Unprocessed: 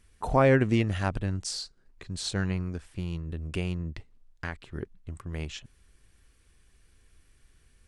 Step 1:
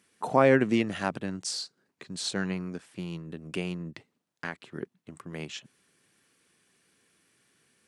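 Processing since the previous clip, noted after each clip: high-pass 160 Hz 24 dB/octave; trim +1 dB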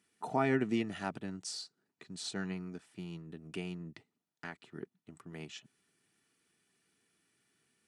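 comb of notches 540 Hz; trim -7 dB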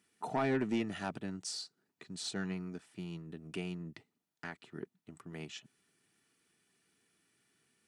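saturation -25.5 dBFS, distortion -13 dB; trim +1 dB

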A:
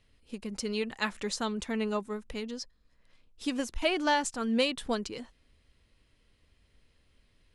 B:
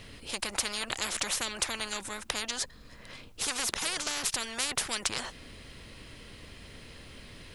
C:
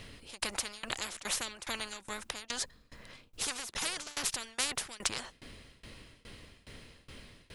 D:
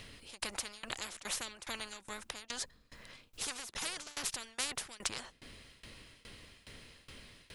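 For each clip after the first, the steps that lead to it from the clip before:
spectrum-flattening compressor 10:1; trim +5 dB
tremolo saw down 2.4 Hz, depth 95%
tape noise reduction on one side only encoder only; trim -4 dB

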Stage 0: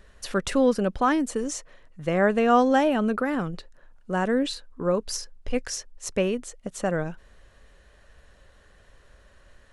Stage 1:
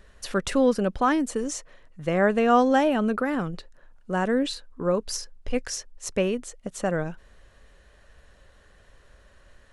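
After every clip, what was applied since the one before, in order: no audible change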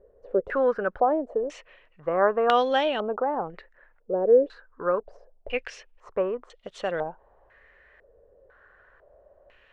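resonant low shelf 320 Hz -8 dB, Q 1.5; step-sequenced low-pass 2 Hz 490–3500 Hz; trim -3.5 dB

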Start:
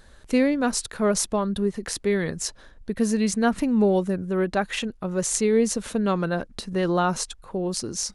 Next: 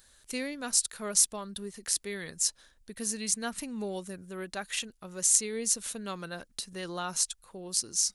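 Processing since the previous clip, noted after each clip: pre-emphasis filter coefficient 0.9; trim +3 dB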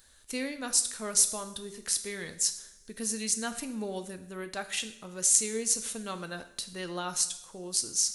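two-slope reverb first 0.63 s, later 2.2 s, from -21 dB, DRR 8 dB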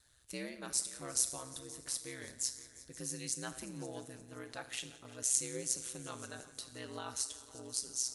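multi-head delay 175 ms, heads all three, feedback 50%, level -21 dB; ring modulator 65 Hz; trim -6 dB

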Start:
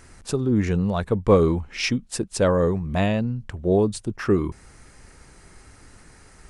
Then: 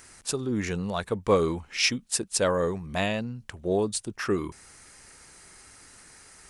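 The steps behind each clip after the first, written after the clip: tilt EQ +2.5 dB/octave; trim -2.5 dB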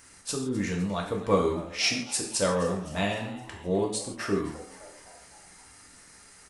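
frequency-shifting echo 257 ms, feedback 60%, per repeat +110 Hz, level -18 dB; gated-style reverb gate 190 ms falling, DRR -0.5 dB; trim -4.5 dB

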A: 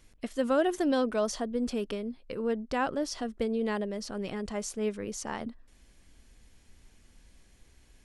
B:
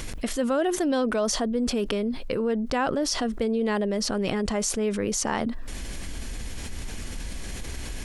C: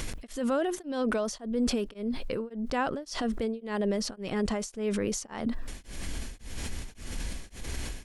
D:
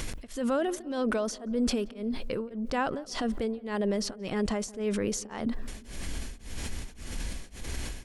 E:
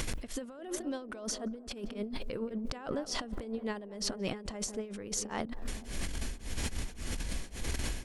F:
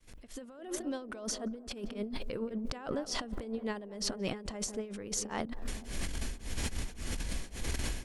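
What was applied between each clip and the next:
level flattener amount 70%
peak limiter -19 dBFS, peak gain reduction 8 dB; tremolo of two beating tones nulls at 1.8 Hz
filtered feedback delay 177 ms, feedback 68%, low-pass 1.3 kHz, level -21 dB
compressor with a negative ratio -34 dBFS, ratio -0.5; feedback echo behind a band-pass 217 ms, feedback 64%, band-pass 550 Hz, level -19 dB; trim -1.5 dB
fade-in on the opening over 0.77 s

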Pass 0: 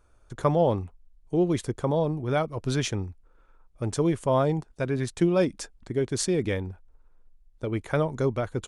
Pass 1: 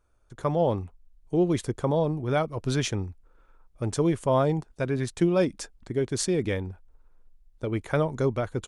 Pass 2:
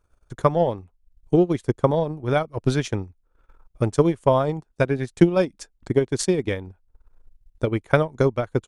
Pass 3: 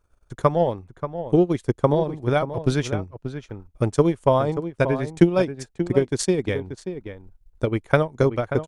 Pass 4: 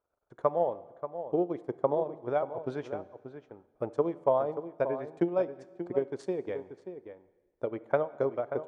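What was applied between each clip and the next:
level rider gain up to 8 dB; trim -7.5 dB
transient shaper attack +9 dB, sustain -11 dB; trim +1 dB
echo from a far wall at 100 m, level -10 dB
band-pass filter 660 Hz, Q 1.3; plate-style reverb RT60 1.4 s, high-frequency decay 0.95×, DRR 16.5 dB; trim -5.5 dB

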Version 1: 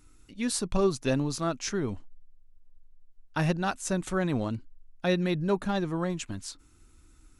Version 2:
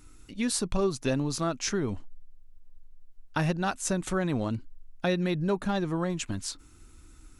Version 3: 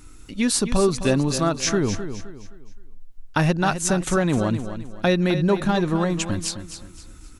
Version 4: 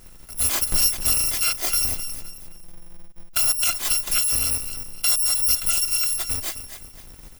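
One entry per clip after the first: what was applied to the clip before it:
compression 2:1, threshold -33 dBFS, peak gain reduction 7.5 dB; trim +5 dB
feedback delay 260 ms, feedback 35%, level -10.5 dB; trim +7.5 dB
bit-reversed sample order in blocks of 256 samples; trim -1 dB

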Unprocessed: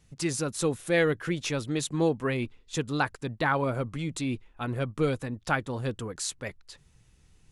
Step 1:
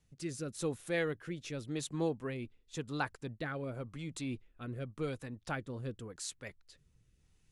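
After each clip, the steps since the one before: rotary cabinet horn 0.9 Hz; trim -8 dB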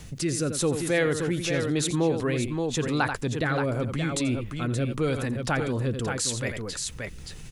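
on a send: multi-tap echo 85/575 ms -13.5/-9 dB; on the sum: level flattener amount 50%; trim +8.5 dB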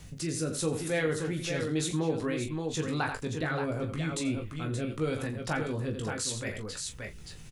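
early reflections 19 ms -5.5 dB, 41 ms -10.5 dB; trim -6.5 dB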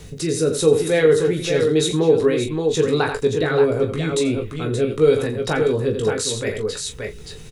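small resonant body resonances 430/3800 Hz, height 15 dB, ringing for 55 ms; trim +8 dB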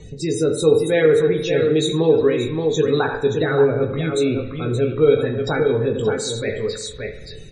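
loudest bins only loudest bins 64; spring tank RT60 1.1 s, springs 50 ms, chirp 25 ms, DRR 9 dB

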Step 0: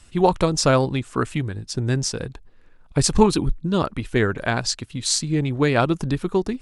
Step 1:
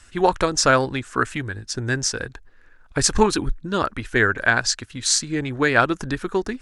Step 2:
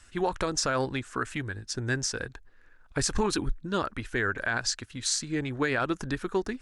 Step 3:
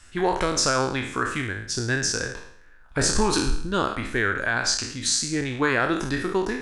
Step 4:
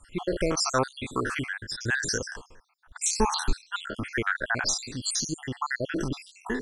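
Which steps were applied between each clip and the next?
fifteen-band graphic EQ 160 Hz -8 dB, 1.6 kHz +11 dB, 6.3 kHz +5 dB; trim -1 dB
peak limiter -11.5 dBFS, peak gain reduction 10 dB; trim -5.5 dB
spectral sustain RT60 0.65 s; trim +3 dB
random holes in the spectrogram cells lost 68%

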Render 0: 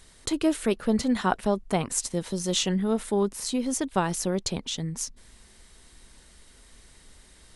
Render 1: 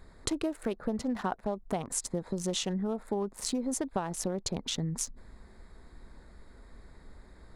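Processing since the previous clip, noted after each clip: local Wiener filter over 15 samples; dynamic bell 740 Hz, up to +5 dB, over -39 dBFS, Q 1.5; compression 10:1, threshold -32 dBFS, peak gain reduction 17.5 dB; trim +3.5 dB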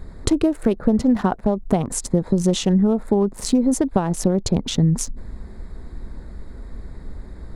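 bass shelf 480 Hz +11.5 dB; trim +6.5 dB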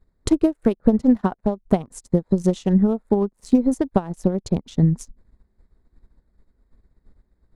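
upward expansion 2.5:1, over -35 dBFS; trim +3.5 dB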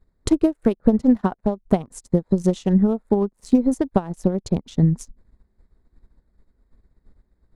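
no audible change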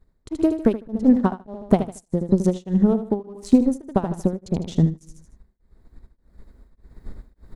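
recorder AGC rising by 7.3 dB/s; feedback delay 77 ms, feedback 40%, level -10.5 dB; tremolo of two beating tones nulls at 1.7 Hz; trim +1.5 dB

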